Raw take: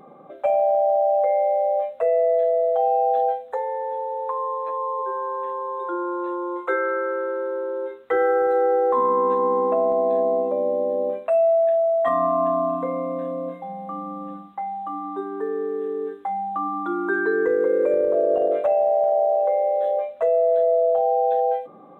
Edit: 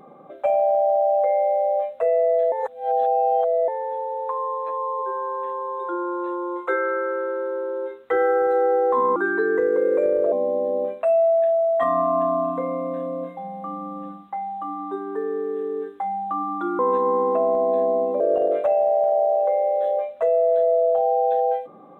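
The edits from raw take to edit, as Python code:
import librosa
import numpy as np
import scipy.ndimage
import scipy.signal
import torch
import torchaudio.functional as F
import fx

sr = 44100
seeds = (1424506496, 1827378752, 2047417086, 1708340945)

y = fx.edit(x, sr, fx.reverse_span(start_s=2.52, length_s=1.16),
    fx.swap(start_s=9.16, length_s=1.41, other_s=17.04, other_length_s=1.16), tone=tone)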